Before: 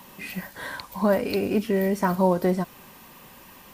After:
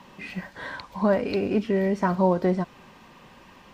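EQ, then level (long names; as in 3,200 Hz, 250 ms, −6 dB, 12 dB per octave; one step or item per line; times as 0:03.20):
high-frequency loss of the air 140 metres
high-shelf EQ 10,000 Hz +7.5 dB
0.0 dB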